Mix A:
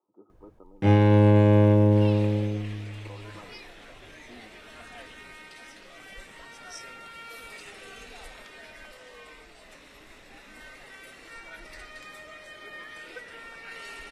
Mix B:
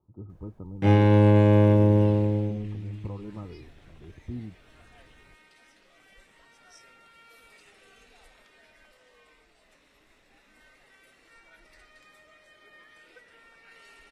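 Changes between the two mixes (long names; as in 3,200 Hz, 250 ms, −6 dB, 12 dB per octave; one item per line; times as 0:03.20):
speech: remove Bessel high-pass filter 480 Hz, order 4
second sound −11.5 dB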